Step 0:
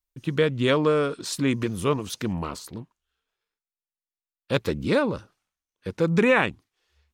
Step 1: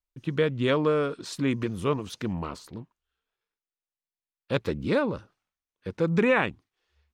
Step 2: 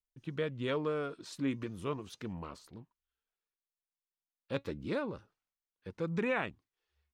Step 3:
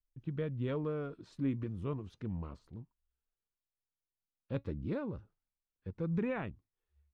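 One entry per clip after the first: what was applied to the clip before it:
high shelf 6100 Hz -10.5 dB; gain -2.5 dB
flange 0.33 Hz, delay 0.8 ms, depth 2.9 ms, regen +80%; gain -5.5 dB
RIAA curve playback; gain -6.5 dB

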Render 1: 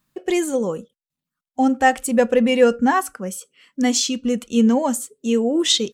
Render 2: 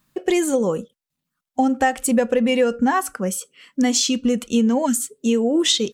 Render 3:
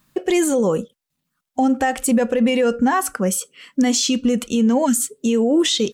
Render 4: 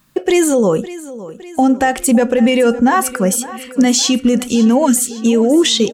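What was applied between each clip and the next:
spectral gain 4.86–5.09, 340–1300 Hz -17 dB; compressor 6:1, threshold -20 dBFS, peak gain reduction 11 dB; gain +5 dB
limiter -14.5 dBFS, peak gain reduction 9.5 dB; gain +4.5 dB
feedback echo 0.56 s, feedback 56%, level -16.5 dB; gain +5 dB

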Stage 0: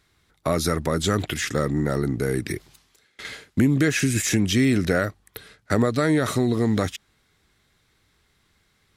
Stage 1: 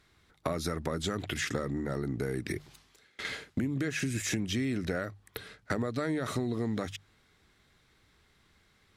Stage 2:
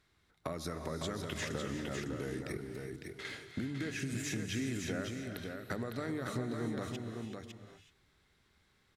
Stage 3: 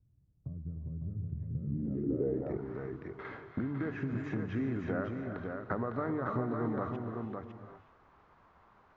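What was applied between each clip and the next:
high shelf 6700 Hz -7 dB; compressor 6:1, threshold -29 dBFS, peak gain reduction 13.5 dB; notches 50/100/150 Hz
echo 0.555 s -5 dB; non-linear reverb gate 0.4 s rising, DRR 7 dB; ending taper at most 270 dB/s; gain -7 dB
in parallel at -9 dB: requantised 8-bit, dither triangular; on the sum: low-pass sweep 120 Hz -> 1100 Hz, 1.54–2.71; downsampling 16000 Hz

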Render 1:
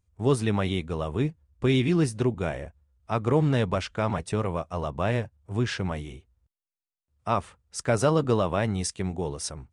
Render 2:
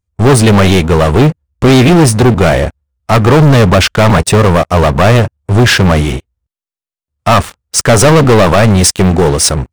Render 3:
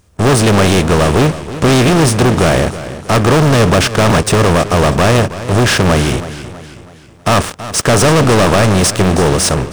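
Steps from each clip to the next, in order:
sample leveller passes 5; gain +8 dB
per-bin compression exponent 0.6; warbling echo 0.323 s, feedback 45%, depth 62 cents, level -14 dB; gain -6.5 dB

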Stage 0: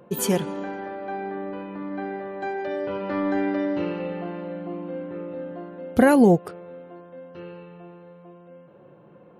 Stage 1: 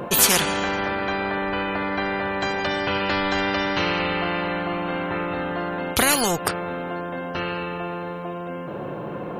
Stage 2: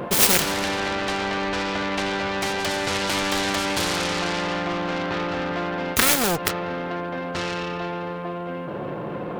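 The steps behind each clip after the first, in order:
spectral compressor 4:1; gain +3 dB
self-modulated delay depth 0.99 ms; gain +1 dB

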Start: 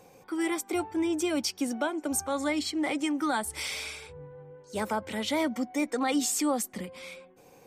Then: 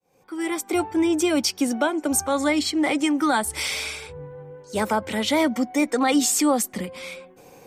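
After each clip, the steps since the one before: opening faded in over 0.82 s; gain +7.5 dB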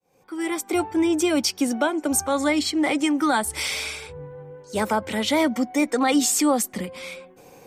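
nothing audible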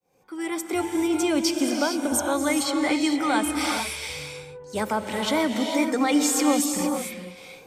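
non-linear reverb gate 0.48 s rising, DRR 3.5 dB; gain -3 dB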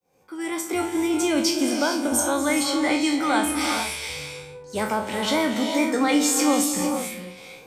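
spectral trails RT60 0.40 s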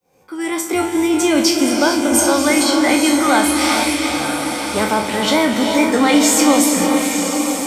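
diffused feedback echo 0.924 s, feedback 40%, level -6 dB; gain +7 dB

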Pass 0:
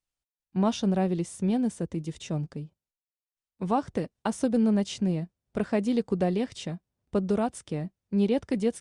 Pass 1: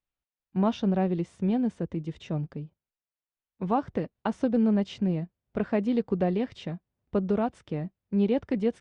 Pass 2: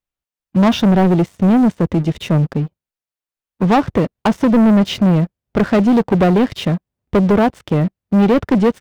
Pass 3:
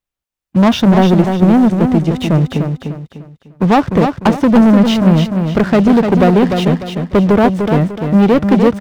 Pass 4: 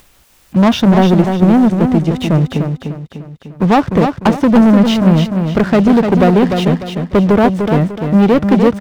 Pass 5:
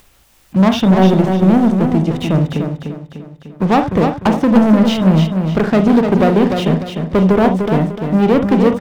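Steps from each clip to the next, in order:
LPF 3000 Hz 12 dB/oct
sample leveller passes 3; gain +7.5 dB
feedback echo 0.299 s, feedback 34%, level -6 dB; gain +2.5 dB
upward compressor, threshold -21 dBFS
reverb, pre-delay 37 ms, DRR 8 dB; gain -2.5 dB

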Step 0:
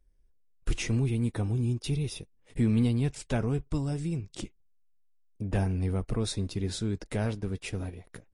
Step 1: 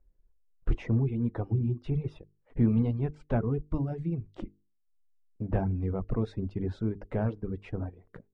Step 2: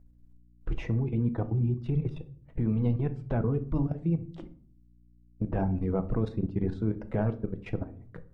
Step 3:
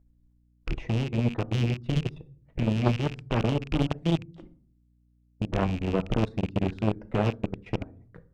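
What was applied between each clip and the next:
LPF 1200 Hz 12 dB/oct; notches 50/100/150/200/250/300/350/400/450 Hz; reverb removal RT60 0.97 s; gain +2.5 dB
level quantiser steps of 16 dB; shoebox room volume 520 m³, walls furnished, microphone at 0.67 m; hum 60 Hz, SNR 30 dB; gain +5.5 dB
rattling part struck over -33 dBFS, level -28 dBFS; added harmonics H 3 -12 dB, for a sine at -16 dBFS; Doppler distortion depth 0.67 ms; gain +8 dB

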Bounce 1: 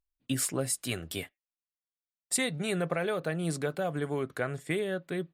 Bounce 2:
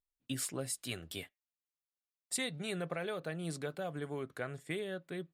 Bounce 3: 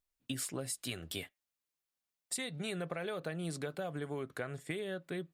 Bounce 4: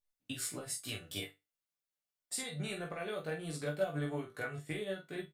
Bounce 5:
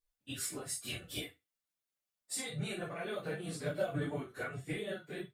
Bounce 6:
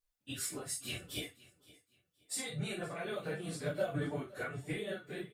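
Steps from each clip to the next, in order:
dynamic EQ 3700 Hz, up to +4 dB, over -48 dBFS, Q 1.3; gain -8 dB
compressor, threshold -39 dBFS, peak gain reduction 8 dB; gain +4 dB
resonator bank G2 minor, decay 0.22 s; early reflections 19 ms -4 dB, 47 ms -4.5 dB; upward expander 1.5:1, over -57 dBFS; gain +12.5 dB
phase scrambler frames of 50 ms
feedback echo 0.519 s, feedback 28%, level -21 dB

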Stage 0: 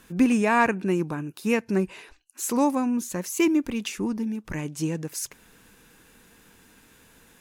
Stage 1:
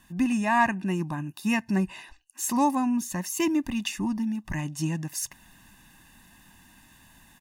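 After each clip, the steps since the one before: comb 1.1 ms, depth 92%; AGC gain up to 4.5 dB; gain -7 dB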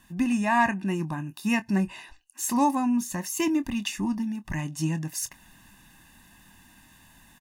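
doubler 25 ms -13 dB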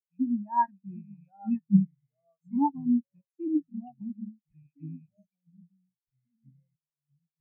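rattling part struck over -37 dBFS, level -19 dBFS; echoes that change speed 0.721 s, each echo -3 st, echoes 3, each echo -6 dB; spectral expander 4:1

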